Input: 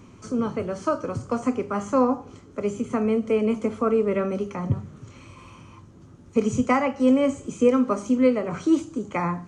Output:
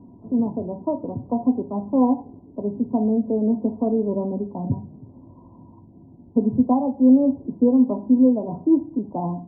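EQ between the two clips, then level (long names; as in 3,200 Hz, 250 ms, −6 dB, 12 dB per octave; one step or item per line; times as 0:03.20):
Chebyshev low-pass with heavy ripple 1,000 Hz, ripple 9 dB
+5.5 dB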